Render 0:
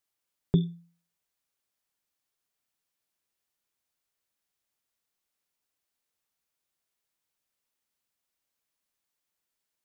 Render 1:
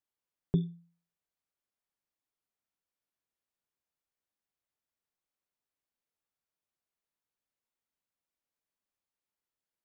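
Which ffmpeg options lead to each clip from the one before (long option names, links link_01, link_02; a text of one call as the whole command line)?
ffmpeg -i in.wav -af "highshelf=frequency=2300:gain=-9,volume=-4.5dB" out.wav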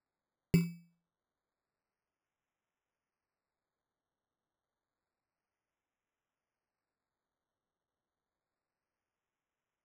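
ffmpeg -i in.wav -af "acrusher=samples=14:mix=1:aa=0.000001:lfo=1:lforange=8.4:lforate=0.29" out.wav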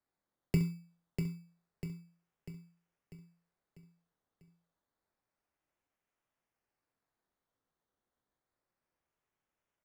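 ffmpeg -i in.wav -filter_complex "[0:a]asplit=2[link_01][link_02];[link_02]aecho=0:1:25|66:0.398|0.251[link_03];[link_01][link_03]amix=inputs=2:normalize=0,acrossover=split=160[link_04][link_05];[link_05]acompressor=threshold=-31dB:ratio=6[link_06];[link_04][link_06]amix=inputs=2:normalize=0,asplit=2[link_07][link_08];[link_08]aecho=0:1:645|1290|1935|2580|3225|3870:0.501|0.251|0.125|0.0626|0.0313|0.0157[link_09];[link_07][link_09]amix=inputs=2:normalize=0" out.wav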